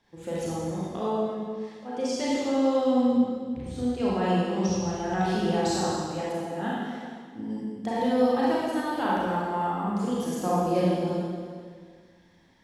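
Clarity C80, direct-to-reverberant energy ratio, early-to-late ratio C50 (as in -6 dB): -1.0 dB, -7.5 dB, -4.0 dB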